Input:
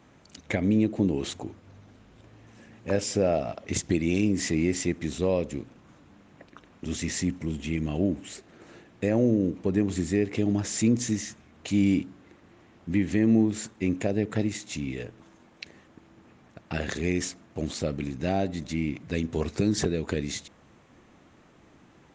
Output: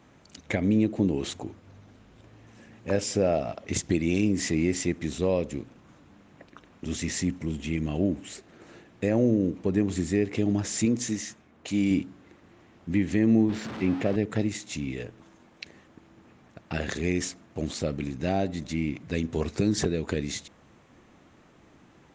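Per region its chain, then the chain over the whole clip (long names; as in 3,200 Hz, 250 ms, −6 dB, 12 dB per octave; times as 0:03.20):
0:10.85–0:11.91: low-shelf EQ 130 Hz −10 dB + one half of a high-frequency compander decoder only
0:13.49–0:14.16: converter with a step at zero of −30 dBFS + high-pass filter 92 Hz + high-frequency loss of the air 190 metres
whole clip: no processing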